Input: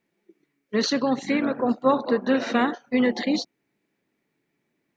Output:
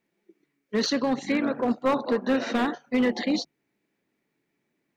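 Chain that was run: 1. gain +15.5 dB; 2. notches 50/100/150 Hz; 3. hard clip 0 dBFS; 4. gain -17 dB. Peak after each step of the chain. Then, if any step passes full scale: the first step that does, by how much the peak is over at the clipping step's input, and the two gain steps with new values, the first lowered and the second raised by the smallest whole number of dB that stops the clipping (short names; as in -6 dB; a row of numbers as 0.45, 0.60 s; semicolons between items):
+8.0, +8.0, 0.0, -17.0 dBFS; step 1, 8.0 dB; step 1 +7.5 dB, step 4 -9 dB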